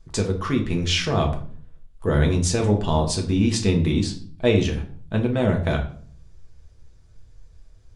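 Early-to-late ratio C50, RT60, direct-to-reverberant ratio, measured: 10.0 dB, 0.50 s, 1.5 dB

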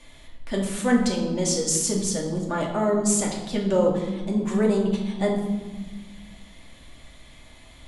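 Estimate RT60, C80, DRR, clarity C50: 1.3 s, 7.5 dB, −2.5 dB, 5.0 dB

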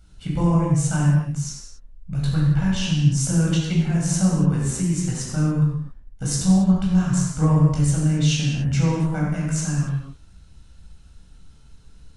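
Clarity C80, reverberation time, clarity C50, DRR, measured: 2.0 dB, non-exponential decay, 0.0 dB, −5.0 dB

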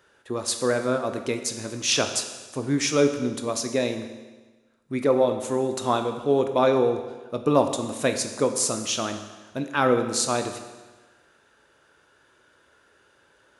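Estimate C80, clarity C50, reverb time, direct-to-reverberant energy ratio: 10.0 dB, 8.5 dB, 1.3 s, 6.5 dB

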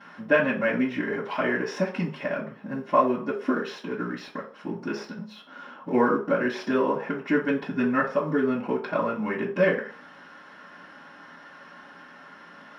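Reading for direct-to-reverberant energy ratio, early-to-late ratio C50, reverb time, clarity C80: −14.5 dB, 9.0 dB, 0.45 s, 13.5 dB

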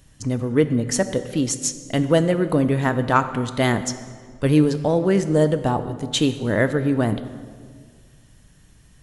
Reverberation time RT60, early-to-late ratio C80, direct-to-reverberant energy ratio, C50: 1.8 s, 13.0 dB, 10.5 dB, 12.0 dB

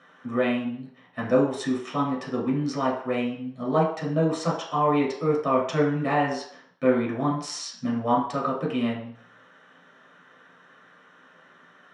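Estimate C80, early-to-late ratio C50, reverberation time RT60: 9.0 dB, 5.5 dB, 0.60 s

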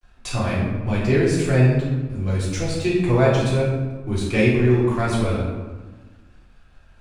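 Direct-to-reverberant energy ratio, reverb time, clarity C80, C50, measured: −9.0 dB, 1.3 s, 3.5 dB, 0.5 dB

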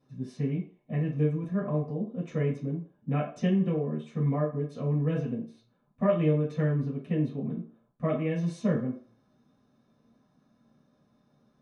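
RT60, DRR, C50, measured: 0.45 s, −7.5 dB, 7.0 dB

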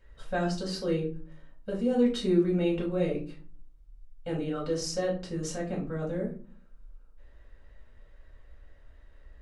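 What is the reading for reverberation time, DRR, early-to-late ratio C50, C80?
0.40 s, −3.5 dB, 8.5 dB, 13.5 dB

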